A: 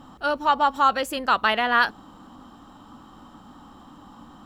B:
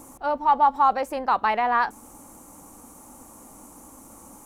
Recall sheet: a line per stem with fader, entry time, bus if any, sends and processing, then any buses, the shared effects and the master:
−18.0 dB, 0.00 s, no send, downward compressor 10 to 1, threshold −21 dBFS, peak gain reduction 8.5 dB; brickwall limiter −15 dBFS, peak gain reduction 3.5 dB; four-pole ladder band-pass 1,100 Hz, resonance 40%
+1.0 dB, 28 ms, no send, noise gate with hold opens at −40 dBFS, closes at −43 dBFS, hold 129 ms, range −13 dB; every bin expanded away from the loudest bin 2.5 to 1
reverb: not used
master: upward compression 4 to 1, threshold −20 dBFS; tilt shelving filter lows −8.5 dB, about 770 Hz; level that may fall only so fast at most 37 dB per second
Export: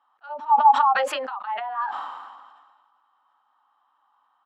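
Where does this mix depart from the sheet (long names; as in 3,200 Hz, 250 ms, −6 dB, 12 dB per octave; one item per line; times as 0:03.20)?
stem A −18.0 dB → −10.0 dB
master: missing upward compression 4 to 1, threshold −20 dBFS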